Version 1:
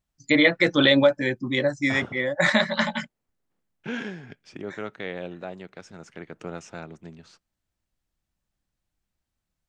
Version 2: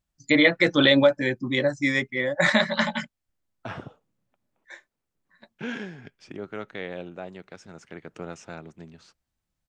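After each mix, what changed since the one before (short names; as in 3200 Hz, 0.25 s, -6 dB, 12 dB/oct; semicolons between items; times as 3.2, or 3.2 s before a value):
second voice: entry +1.75 s; reverb: off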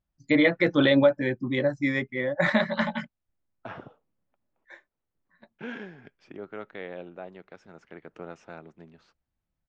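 second voice: add low shelf 190 Hz -11.5 dB; master: add tape spacing loss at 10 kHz 24 dB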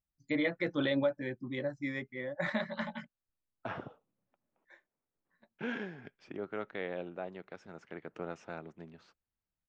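first voice -11.0 dB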